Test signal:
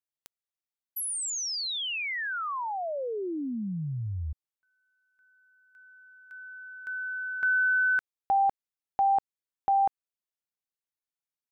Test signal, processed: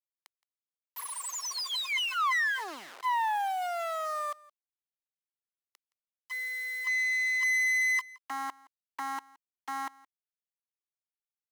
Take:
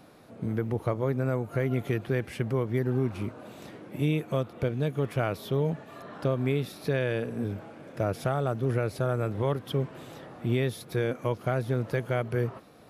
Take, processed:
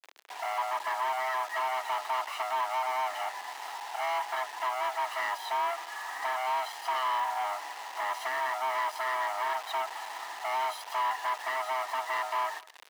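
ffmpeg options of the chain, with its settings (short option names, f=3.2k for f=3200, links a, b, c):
-filter_complex "[0:a]afftfilt=real='real(if(lt(b,1008),b+24*(1-2*mod(floor(b/24),2)),b),0)':imag='imag(if(lt(b,1008),b+24*(1-2*mod(floor(b/24),2)),b),0)':win_size=2048:overlap=0.75,aeval=exprs='(tanh(50.1*val(0)+0.75)-tanh(0.75))/50.1':c=same,equalizer=f=1.4k:w=0.94:g=12,aecho=1:1:1:0.85,acrusher=bits=6:mix=0:aa=0.000001,asplit=2[a][b];[b]highpass=f=720:p=1,volume=12dB,asoftclip=type=tanh:threshold=-16.5dB[c];[a][c]amix=inputs=2:normalize=0,lowpass=f=5.1k:p=1,volume=-6dB,highpass=f=360:w=0.5412,highpass=f=360:w=1.3066,aecho=1:1:169:0.075,volume=-5.5dB"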